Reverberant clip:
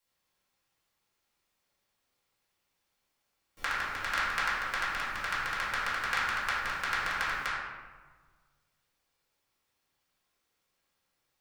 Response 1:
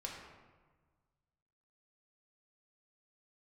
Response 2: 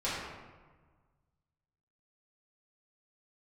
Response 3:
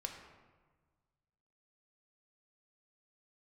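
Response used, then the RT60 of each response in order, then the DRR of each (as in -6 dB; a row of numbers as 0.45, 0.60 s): 2; 1.4, 1.4, 1.4 s; -2.0, -10.5, 2.5 dB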